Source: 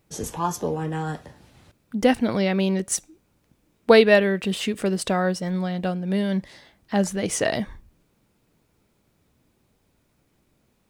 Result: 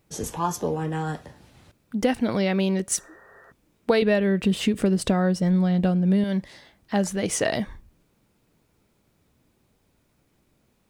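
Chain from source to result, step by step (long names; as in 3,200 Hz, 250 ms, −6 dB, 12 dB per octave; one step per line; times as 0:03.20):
0:02.95–0:03.49: healed spectral selection 380–1,900 Hz before
0:04.02–0:06.24: low-shelf EQ 310 Hz +11.5 dB
downward compressor 6 to 1, threshold −17 dBFS, peak gain reduction 9.5 dB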